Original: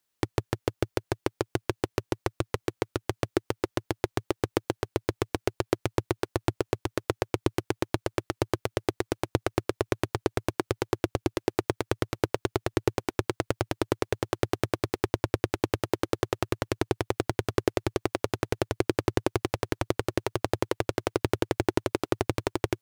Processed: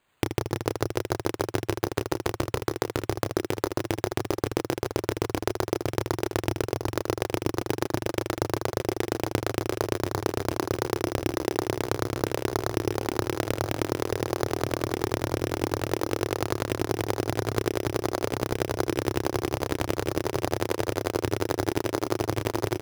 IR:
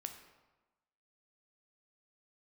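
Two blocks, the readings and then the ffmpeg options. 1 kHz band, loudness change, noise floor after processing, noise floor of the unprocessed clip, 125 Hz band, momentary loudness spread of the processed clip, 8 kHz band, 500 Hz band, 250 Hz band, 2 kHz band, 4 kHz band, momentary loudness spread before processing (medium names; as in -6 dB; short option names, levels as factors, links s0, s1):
+2.0 dB, +1.5 dB, -55 dBFS, -80 dBFS, +1.5 dB, 2 LU, +4.5 dB, +1.5 dB, +1.5 dB, +1.5 dB, +2.5 dB, 3 LU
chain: -filter_complex "[0:a]aecho=1:1:30|78|154.8|277.7|474.3:0.631|0.398|0.251|0.158|0.1,acrossover=split=1700|4600[s0][s1][s2];[s0]acompressor=threshold=0.0282:ratio=4[s3];[s1]acompressor=threshold=0.00398:ratio=4[s4];[s2]acompressor=threshold=0.00562:ratio=4[s5];[s3][s4][s5]amix=inputs=3:normalize=0,acrusher=samples=8:mix=1:aa=0.000001,volume=2.37"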